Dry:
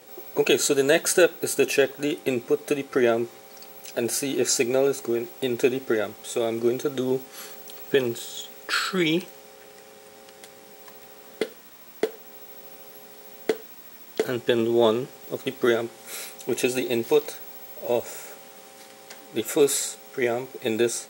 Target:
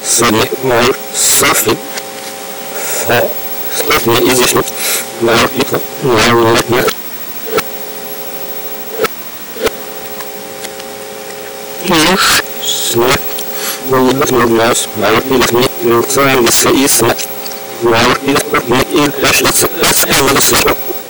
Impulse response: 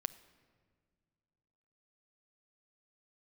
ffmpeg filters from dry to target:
-af "areverse,aeval=exprs='0.562*sin(PI/2*8.91*val(0)/0.562)':channel_layout=same"

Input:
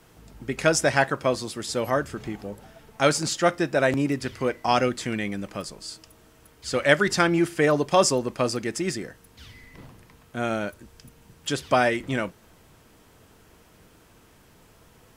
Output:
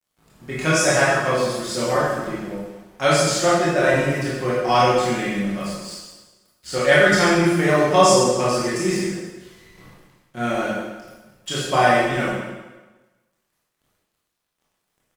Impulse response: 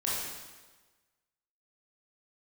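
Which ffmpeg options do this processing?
-filter_complex "[0:a]aecho=1:1:5.5:0.53,aeval=exprs='sgn(val(0))*max(abs(val(0))-0.00473,0)':channel_layout=same[link_01];[1:a]atrim=start_sample=2205,asetrate=48510,aresample=44100[link_02];[link_01][link_02]afir=irnorm=-1:irlink=0,volume=-1.5dB"

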